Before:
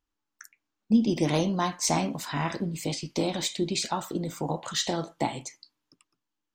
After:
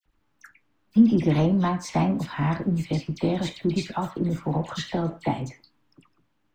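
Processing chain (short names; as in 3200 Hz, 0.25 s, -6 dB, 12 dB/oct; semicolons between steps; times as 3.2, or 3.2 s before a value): G.711 law mismatch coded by mu; tone controls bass +8 dB, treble -15 dB; dispersion lows, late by 58 ms, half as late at 2000 Hz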